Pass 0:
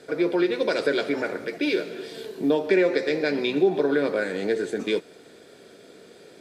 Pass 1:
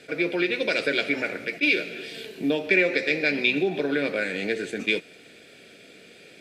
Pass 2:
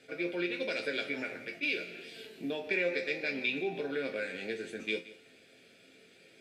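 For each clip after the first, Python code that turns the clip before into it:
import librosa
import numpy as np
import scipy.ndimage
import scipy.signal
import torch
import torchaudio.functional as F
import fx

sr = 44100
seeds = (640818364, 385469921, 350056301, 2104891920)

y1 = fx.graphic_eq_15(x, sr, hz=(400, 1000, 2500), db=(-5, -9, 12))
y1 = fx.attack_slew(y1, sr, db_per_s=570.0)
y2 = fx.resonator_bank(y1, sr, root=41, chord='major', decay_s=0.21)
y2 = y2 + 10.0 ** (-18.0 / 20.0) * np.pad(y2, (int(172 * sr / 1000.0), 0))[:len(y2)]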